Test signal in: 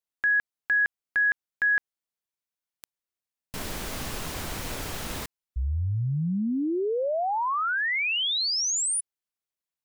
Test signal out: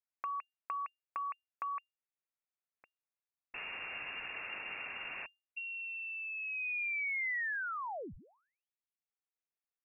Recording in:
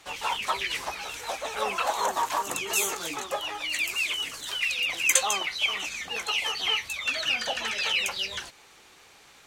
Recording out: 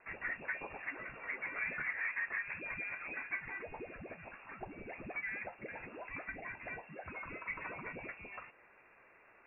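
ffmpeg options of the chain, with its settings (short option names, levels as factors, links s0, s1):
-filter_complex "[0:a]acrossover=split=380|850[s0][s1][s2];[s0]acompressor=threshold=0.0141:ratio=4[s3];[s1]acompressor=threshold=0.02:ratio=4[s4];[s2]acompressor=threshold=0.0178:ratio=4[s5];[s3][s4][s5]amix=inputs=3:normalize=0,lowpass=f=2400:t=q:w=0.5098,lowpass=f=2400:t=q:w=0.6013,lowpass=f=2400:t=q:w=0.9,lowpass=f=2400:t=q:w=2.563,afreqshift=-2800,volume=0.501"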